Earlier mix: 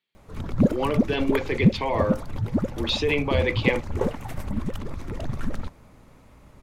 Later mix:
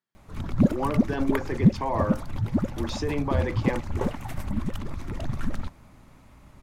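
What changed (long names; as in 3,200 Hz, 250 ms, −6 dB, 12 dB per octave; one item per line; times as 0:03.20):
speech: add flat-topped bell 3,000 Hz −14.5 dB 1.3 octaves
master: add parametric band 470 Hz −7.5 dB 0.5 octaves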